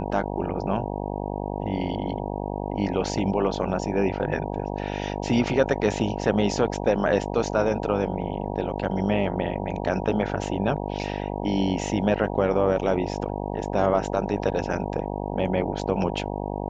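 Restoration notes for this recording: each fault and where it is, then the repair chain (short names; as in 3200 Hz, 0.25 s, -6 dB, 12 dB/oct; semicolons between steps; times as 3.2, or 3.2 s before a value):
buzz 50 Hz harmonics 19 -30 dBFS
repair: de-hum 50 Hz, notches 19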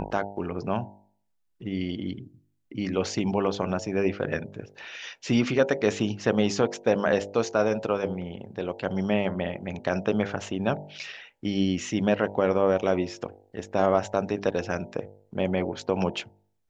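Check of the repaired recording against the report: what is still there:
none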